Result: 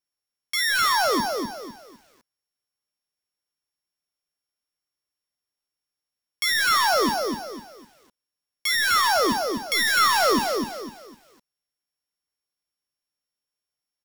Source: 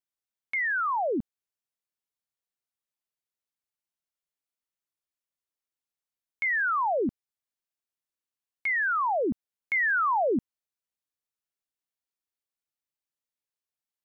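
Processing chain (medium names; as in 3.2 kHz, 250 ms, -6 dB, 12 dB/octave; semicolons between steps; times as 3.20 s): sorted samples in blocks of 8 samples; dynamic bell 1.3 kHz, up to +8 dB, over -43 dBFS, Q 2.6; in parallel at -8 dB: integer overflow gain 21 dB; on the sum: early reflections 18 ms -15.5 dB, 49 ms -15 dB; on a send at -19.5 dB: reverberation RT60 0.50 s, pre-delay 25 ms; on the sum: bit-crushed delay 252 ms, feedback 35%, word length 9-bit, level -4 dB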